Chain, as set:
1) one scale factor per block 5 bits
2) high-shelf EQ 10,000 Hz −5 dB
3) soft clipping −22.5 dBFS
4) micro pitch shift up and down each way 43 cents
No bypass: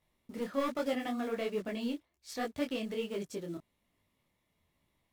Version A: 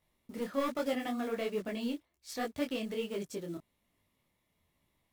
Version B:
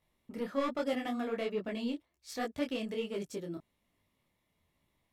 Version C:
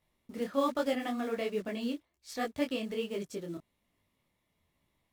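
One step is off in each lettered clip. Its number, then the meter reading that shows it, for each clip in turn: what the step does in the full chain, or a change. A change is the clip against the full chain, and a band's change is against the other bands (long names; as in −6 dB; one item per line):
2, 8 kHz band +1.5 dB
1, distortion level −24 dB
3, distortion level −15 dB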